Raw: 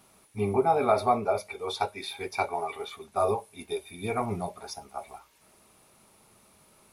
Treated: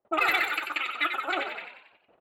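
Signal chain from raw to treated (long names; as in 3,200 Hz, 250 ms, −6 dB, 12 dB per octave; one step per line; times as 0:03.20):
in parallel at +2 dB: downward compressor 6 to 1, threshold −38 dBFS, peak gain reduction 18.5 dB
on the sum: noise gate with hold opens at −41 dBFS
asymmetric clip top −17.5 dBFS
graphic EQ with 10 bands 125 Hz +6 dB, 250 Hz +7 dB, 500 Hz +5 dB, 1,000 Hz +6 dB, 2,000 Hz −12 dB, 4,000 Hz +6 dB, 8,000 Hz +3 dB
change of speed 3.14×
high-shelf EQ 5,300 Hz +4 dB
low-pass that shuts in the quiet parts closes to 670 Hz, open at −15 dBFS
flanger 1.2 Hz, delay 8.3 ms, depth 2.3 ms, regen −76%
echo with shifted repeats 92 ms, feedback 49%, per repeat +56 Hz, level −7 dB
level −3.5 dB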